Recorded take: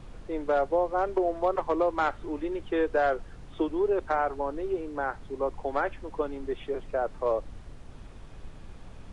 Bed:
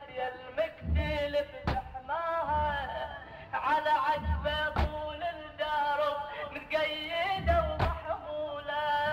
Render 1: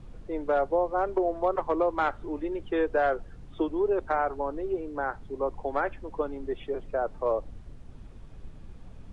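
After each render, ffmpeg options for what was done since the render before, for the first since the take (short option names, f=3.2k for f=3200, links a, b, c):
-af "afftdn=nr=7:nf=-47"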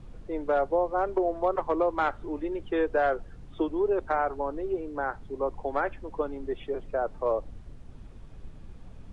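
-af anull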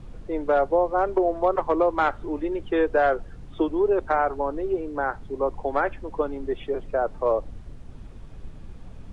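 -af "volume=4.5dB"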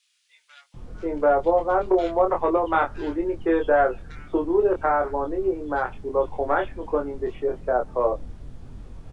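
-filter_complex "[0:a]asplit=2[a][b];[b]adelay=24,volume=-4dB[c];[a][c]amix=inputs=2:normalize=0,acrossover=split=2600[d][e];[d]adelay=740[f];[f][e]amix=inputs=2:normalize=0"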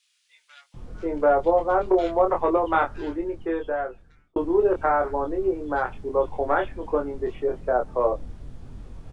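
-filter_complex "[0:a]asplit=2[a][b];[a]atrim=end=4.36,asetpts=PTS-STARTPTS,afade=t=out:st=2.75:d=1.61[c];[b]atrim=start=4.36,asetpts=PTS-STARTPTS,afade=t=in:d=0.004:c=hsin[d];[c][d]concat=n=2:v=0:a=1"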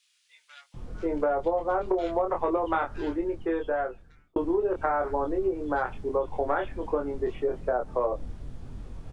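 -af "acompressor=threshold=-22dB:ratio=10"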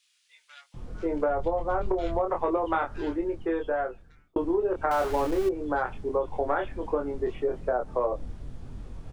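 -filter_complex "[0:a]asplit=3[a][b][c];[a]afade=t=out:st=1.27:d=0.02[d];[b]asubboost=boost=4.5:cutoff=200,afade=t=in:st=1.27:d=0.02,afade=t=out:st=2.19:d=0.02[e];[c]afade=t=in:st=2.19:d=0.02[f];[d][e][f]amix=inputs=3:normalize=0,asettb=1/sr,asplit=3[g][h][i];[g]atrim=end=4.914[j];[h]atrim=start=4.91:end=5.49,asetpts=PTS-STARTPTS,afade=t=in:d=0.004:c=qsin,afade=t=out:st=0.576:d=0.004:c=qsin,aeval=exprs='val(0)+0.5*0.0251*sgn(val(0))':c=same[k];[i]atrim=start=5.486[l];[j][k]acrossfade=d=0.004:c1=hsin:c2=qsin[m];[m][l]acrossfade=d=0.004:c1=qsin:c2=hsin"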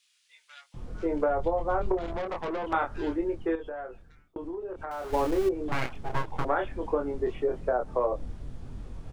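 -filter_complex "[0:a]asettb=1/sr,asplit=3[a][b][c];[a]atrim=end=1.974[d];[b]atrim=start=1.97:end=2.73,asetpts=PTS-STARTPTS,afade=t=in:d=0.004:c=qsin,afade=t=out:st=0.756:d=0.004:c=qsin,aeval=exprs='(tanh(28.2*val(0)+0.35)-tanh(0.35))/28.2':c=same[e];[c]atrim=start=2.726[f];[d][e]acrossfade=d=0.004:c1=hsin:c2=qsin[g];[g][f]acrossfade=d=0.004:c1=qsin:c2=hsin,asettb=1/sr,asplit=3[h][i][j];[h]atrim=end=3.554[k];[i]atrim=start=3.55:end=5.13,asetpts=PTS-STARTPTS,afade=t=in:d=0.004:c=qsin,afade=t=out:st=1.576:d=0.004:c=qsin,acompressor=threshold=-38dB:ratio=2.5:attack=3.2:release=140:knee=1:detection=peak[l];[j]atrim=start=5.126[m];[k][l]acrossfade=d=0.004:c1=hsin:c2=qsin[n];[n][m]acrossfade=d=0.004:c1=qsin:c2=hsin,asettb=1/sr,asplit=3[o][p][q];[o]atrim=end=5.684[r];[p]atrim=start=5.68:end=6.45,asetpts=PTS-STARTPTS,afade=t=in:d=0.004:c=qsin,afade=t=out:st=0.766:d=0.004:c=qsin,aeval=exprs='abs(val(0))':c=same[s];[q]atrim=start=6.446[t];[r][s]acrossfade=d=0.004:c1=hsin:c2=qsin[u];[u][t]acrossfade=d=0.004:c1=qsin:c2=hsin"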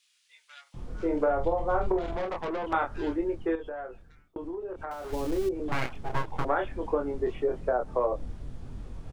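-filter_complex "[0:a]asplit=3[a][b][c];[a]afade=t=out:st=0.65:d=0.02[d];[b]asplit=2[e][f];[f]adelay=46,volume=-8dB[g];[e][g]amix=inputs=2:normalize=0,afade=t=in:st=0.65:d=0.02,afade=t=out:st=2.28:d=0.02[h];[c]afade=t=in:st=2.28:d=0.02[i];[d][h][i]amix=inputs=3:normalize=0,asettb=1/sr,asplit=3[j][k][l];[j]atrim=end=4.934[m];[k]atrim=start=4.93:end=5.6,asetpts=PTS-STARTPTS,afade=t=in:d=0.004:c=qsin,afade=t=out:st=0.666:d=0.004:c=qsin,acrossover=split=400|3000[n][o][p];[o]acompressor=threshold=-37dB:ratio=6:attack=3.2:release=140:knee=2.83:detection=peak[q];[n][q][p]amix=inputs=3:normalize=0[r];[l]atrim=start=5.596[s];[m][r]acrossfade=d=0.004:c1=hsin:c2=qsin[t];[t][s]acrossfade=d=0.004:c1=qsin:c2=hsin"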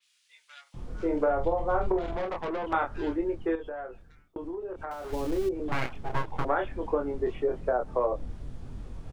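-af "adynamicequalizer=threshold=0.00251:dfrequency=4400:dqfactor=0.7:tfrequency=4400:tqfactor=0.7:attack=5:release=100:ratio=0.375:range=1.5:mode=cutabove:tftype=highshelf"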